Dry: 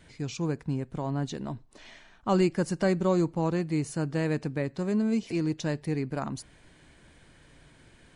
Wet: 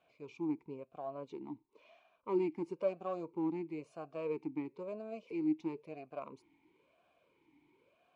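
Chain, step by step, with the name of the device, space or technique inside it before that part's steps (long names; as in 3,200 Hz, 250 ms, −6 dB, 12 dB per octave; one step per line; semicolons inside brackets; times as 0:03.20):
talk box (tube saturation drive 20 dB, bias 0.6; formant filter swept between two vowels a-u 0.99 Hz)
level +2.5 dB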